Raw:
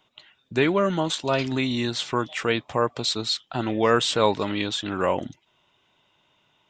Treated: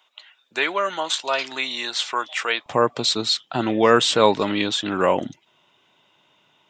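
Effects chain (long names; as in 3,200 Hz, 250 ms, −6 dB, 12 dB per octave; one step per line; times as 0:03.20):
high-pass filter 770 Hz 12 dB per octave, from 0:02.66 140 Hz
level +4.5 dB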